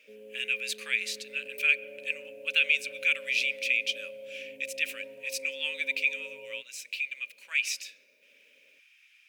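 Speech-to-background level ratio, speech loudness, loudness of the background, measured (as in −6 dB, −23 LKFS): 17.0 dB, −29.5 LKFS, −46.5 LKFS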